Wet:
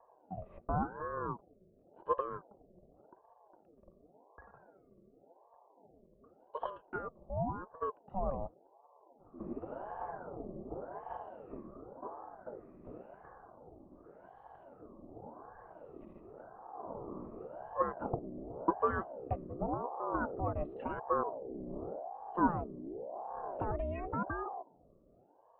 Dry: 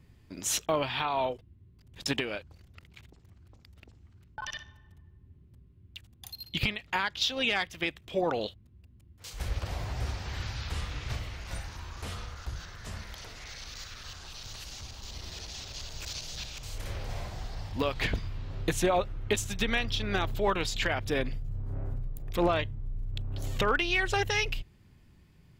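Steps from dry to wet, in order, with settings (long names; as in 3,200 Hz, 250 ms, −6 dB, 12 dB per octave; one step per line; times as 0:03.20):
auto-filter low-pass sine 0.64 Hz 420–2,800 Hz
formant resonators in series u
ring modulator whose carrier an LFO sweeps 540 Hz, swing 50%, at 0.9 Hz
level +7.5 dB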